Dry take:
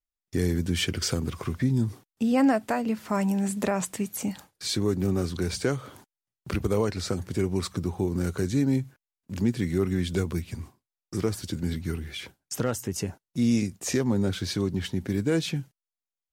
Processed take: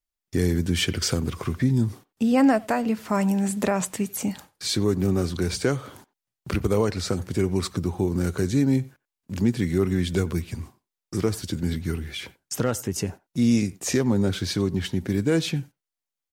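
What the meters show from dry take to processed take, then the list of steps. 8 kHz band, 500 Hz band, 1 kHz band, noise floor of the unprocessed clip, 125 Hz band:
+3.0 dB, +3.0 dB, +3.0 dB, under -85 dBFS, +3.0 dB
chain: speakerphone echo 90 ms, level -21 dB; gain +3 dB

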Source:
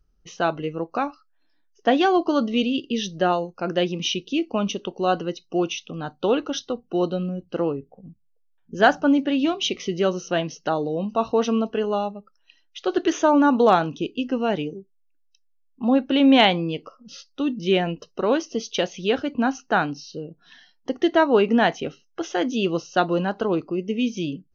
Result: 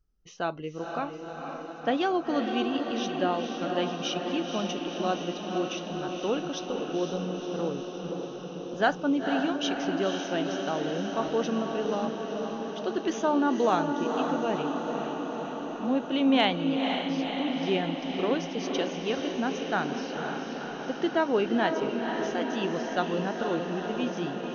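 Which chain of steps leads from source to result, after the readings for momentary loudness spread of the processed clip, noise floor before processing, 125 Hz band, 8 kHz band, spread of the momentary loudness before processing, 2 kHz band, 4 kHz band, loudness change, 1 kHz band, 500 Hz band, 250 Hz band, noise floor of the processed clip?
9 LU, -64 dBFS, -6.0 dB, n/a, 12 LU, -5.5 dB, -5.5 dB, -6.5 dB, -5.5 dB, -6.0 dB, -6.0 dB, -39 dBFS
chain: diffused feedback echo 0.5 s, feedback 74%, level -5 dB; gain -8 dB

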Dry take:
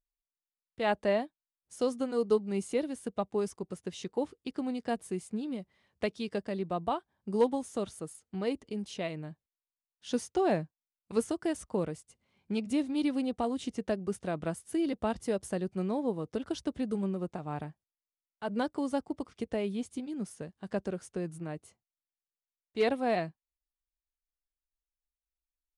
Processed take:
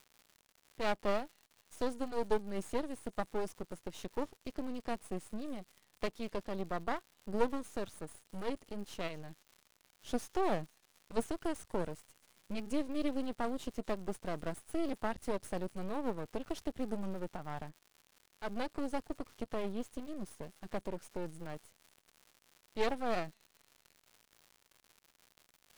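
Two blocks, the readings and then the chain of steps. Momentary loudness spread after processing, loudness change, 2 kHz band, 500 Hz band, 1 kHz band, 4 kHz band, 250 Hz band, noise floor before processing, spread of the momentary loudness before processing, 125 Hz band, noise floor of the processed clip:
11 LU, -6.0 dB, -3.5 dB, -6.0 dB, -3.0 dB, -4.5 dB, -7.0 dB, under -85 dBFS, 11 LU, -7.0 dB, -73 dBFS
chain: crackle 310/s -46 dBFS; thin delay 0.244 s, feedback 48%, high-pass 5300 Hz, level -17 dB; half-wave rectifier; gain -1 dB

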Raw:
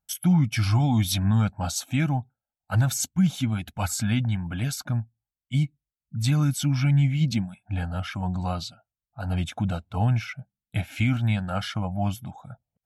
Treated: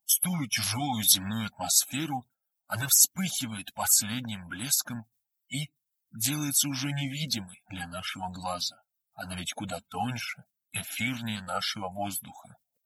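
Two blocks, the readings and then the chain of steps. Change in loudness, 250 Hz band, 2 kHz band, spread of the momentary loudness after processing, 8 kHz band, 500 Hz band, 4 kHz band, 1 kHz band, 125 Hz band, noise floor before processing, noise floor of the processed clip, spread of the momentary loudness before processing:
-2.5 dB, -8.5 dB, -0.5 dB, 15 LU, +9.0 dB, -3.5 dB, +4.5 dB, -1.0 dB, -14.5 dB, under -85 dBFS, -84 dBFS, 10 LU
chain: bin magnitudes rounded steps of 30 dB; RIAA curve recording; gain -2 dB

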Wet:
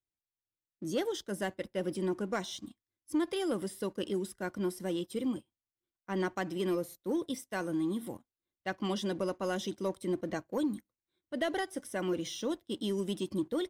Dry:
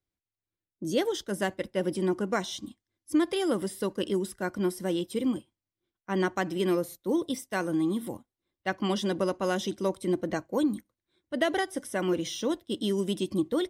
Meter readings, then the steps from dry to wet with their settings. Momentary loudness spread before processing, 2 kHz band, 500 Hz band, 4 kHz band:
7 LU, -6.0 dB, -5.0 dB, -5.5 dB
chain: sample leveller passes 1; gain -8.5 dB

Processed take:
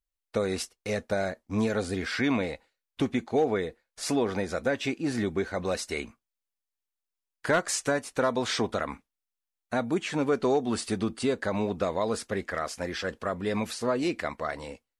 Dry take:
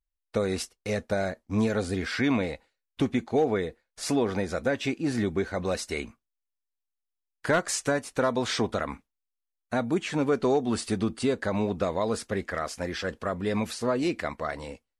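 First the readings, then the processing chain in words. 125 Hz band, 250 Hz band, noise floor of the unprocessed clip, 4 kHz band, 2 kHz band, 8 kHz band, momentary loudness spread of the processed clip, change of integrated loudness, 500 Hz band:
-3.0 dB, -1.5 dB, -85 dBFS, 0.0 dB, 0.0 dB, 0.0 dB, 8 LU, -1.0 dB, -0.5 dB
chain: low shelf 210 Hz -4 dB

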